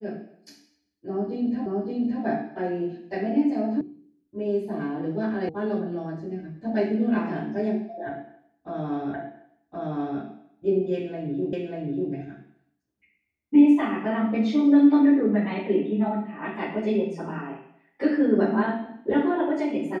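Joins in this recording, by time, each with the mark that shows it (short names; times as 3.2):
1.66 repeat of the last 0.57 s
3.81 sound cut off
5.49 sound cut off
9.14 repeat of the last 1.07 s
11.53 repeat of the last 0.59 s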